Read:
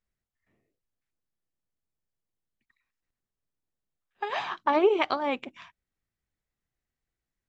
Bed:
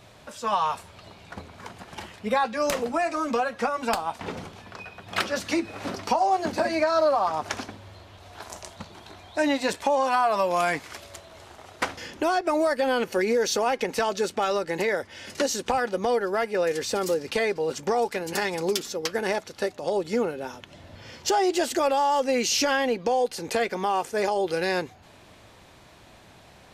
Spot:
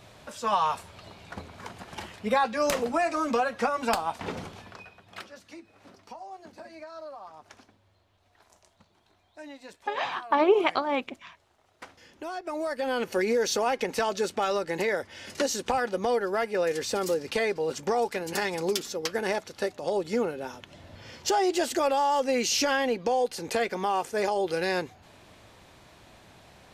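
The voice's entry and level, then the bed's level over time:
5.65 s, +1.0 dB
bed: 4.59 s -0.5 dB
5.38 s -20.5 dB
11.66 s -20.5 dB
13.13 s -2 dB

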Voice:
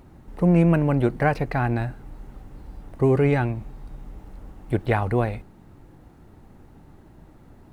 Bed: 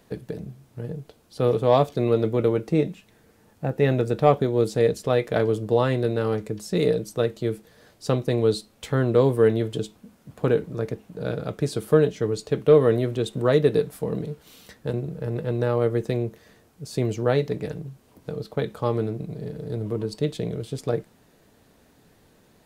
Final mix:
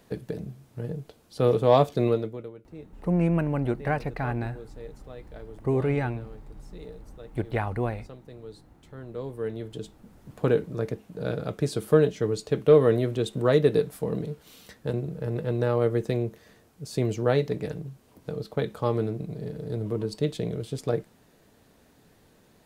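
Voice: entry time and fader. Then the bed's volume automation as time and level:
2.65 s, -6.0 dB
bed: 2.07 s -0.5 dB
2.54 s -22.5 dB
8.82 s -22.5 dB
10.28 s -1.5 dB

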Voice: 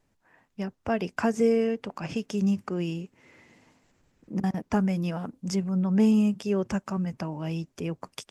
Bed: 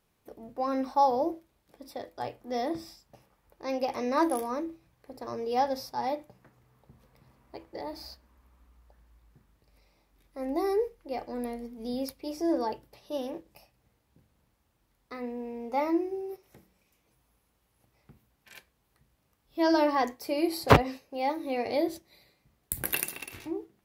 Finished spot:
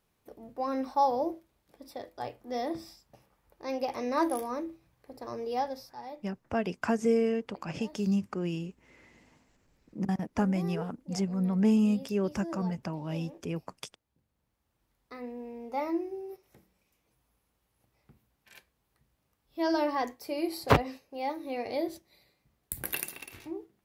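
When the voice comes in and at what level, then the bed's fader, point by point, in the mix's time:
5.65 s, -3.0 dB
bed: 5.47 s -2 dB
6.02 s -12 dB
14.22 s -12 dB
14.82 s -4 dB

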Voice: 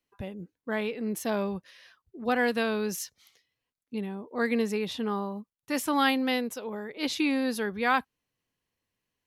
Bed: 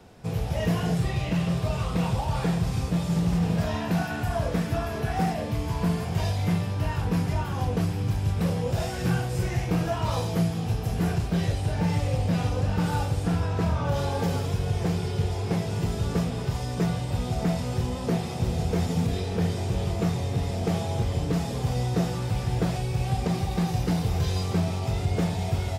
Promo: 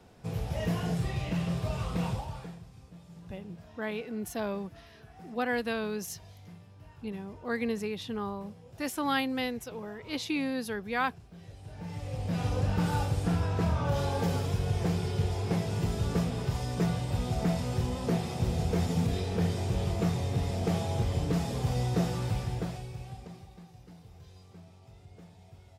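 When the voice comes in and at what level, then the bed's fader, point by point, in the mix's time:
3.10 s, -4.5 dB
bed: 2.1 s -5.5 dB
2.69 s -25 dB
11.35 s -25 dB
12.53 s -3 dB
22.29 s -3 dB
23.69 s -26.5 dB

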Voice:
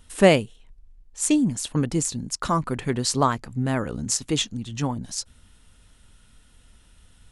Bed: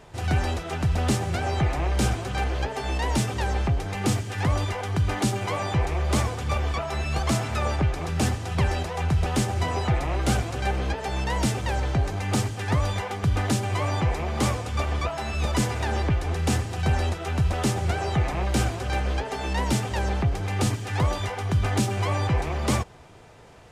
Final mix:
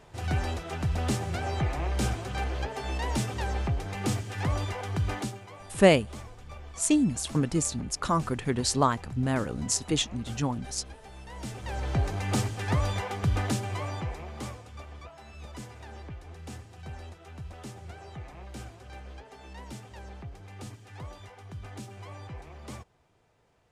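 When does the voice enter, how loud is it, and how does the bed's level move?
5.60 s, -3.0 dB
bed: 5.14 s -5 dB
5.46 s -19 dB
11.24 s -19 dB
11.98 s -3 dB
13.34 s -3 dB
14.87 s -18.5 dB

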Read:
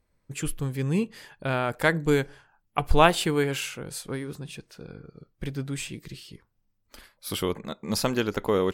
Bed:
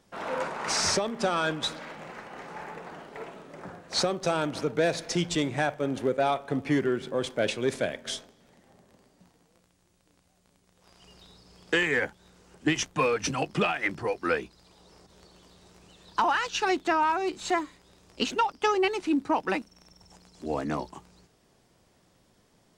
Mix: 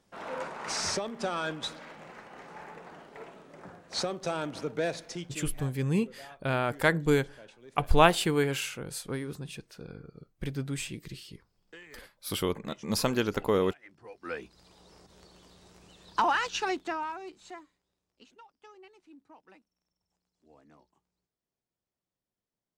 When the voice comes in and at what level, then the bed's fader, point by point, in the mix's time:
5.00 s, -2.0 dB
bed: 4.9 s -5.5 dB
5.84 s -25 dB
13.9 s -25 dB
14.59 s -1 dB
16.45 s -1 dB
18.18 s -29 dB

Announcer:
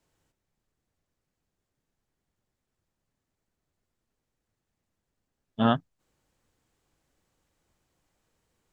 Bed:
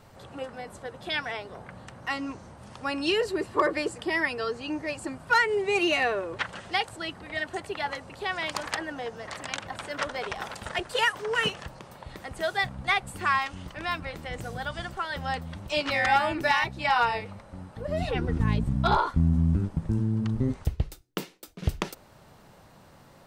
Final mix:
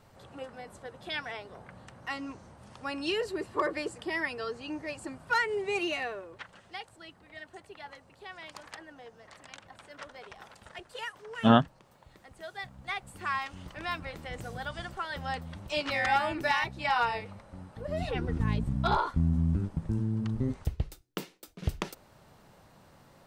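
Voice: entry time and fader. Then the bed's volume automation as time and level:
5.85 s, +2.5 dB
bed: 5.73 s -5.5 dB
6.44 s -14.5 dB
12.45 s -14.5 dB
13.73 s -4 dB

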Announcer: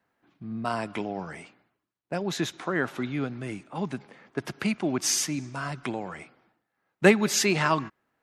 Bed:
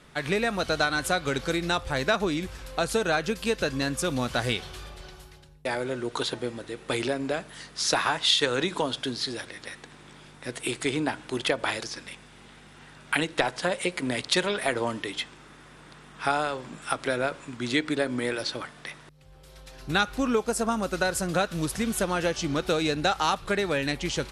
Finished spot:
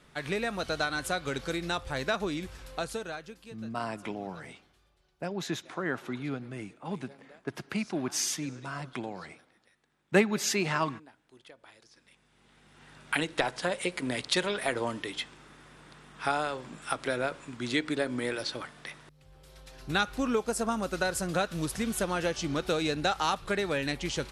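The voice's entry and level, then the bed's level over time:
3.10 s, -5.0 dB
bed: 2.74 s -5.5 dB
3.73 s -27 dB
11.72 s -27 dB
12.95 s -3.5 dB

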